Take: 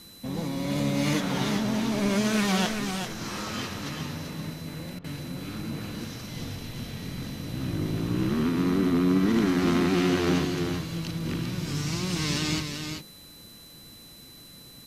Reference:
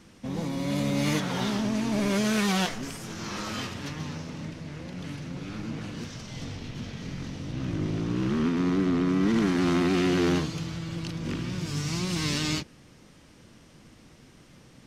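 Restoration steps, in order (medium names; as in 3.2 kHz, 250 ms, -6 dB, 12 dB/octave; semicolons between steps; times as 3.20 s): band-stop 4 kHz, Q 30; interpolate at 4.99 s, 51 ms; noise reduction 6 dB, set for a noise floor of -48 dBFS; inverse comb 386 ms -6.5 dB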